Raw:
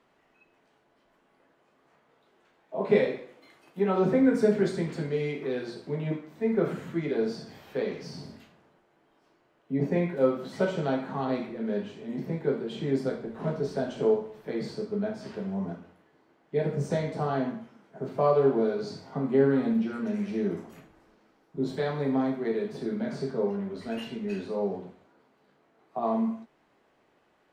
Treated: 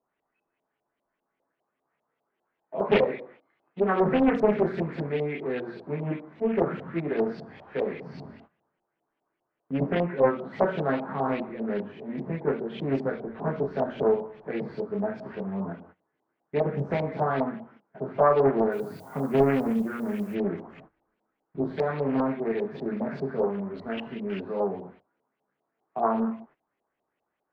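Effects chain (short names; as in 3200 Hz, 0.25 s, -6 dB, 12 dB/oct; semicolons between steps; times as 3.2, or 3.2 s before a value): gate -52 dBFS, range -17 dB; LFO low-pass saw up 5 Hz 660–3200 Hz; 18.71–20.34 added noise violet -56 dBFS; Doppler distortion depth 0.58 ms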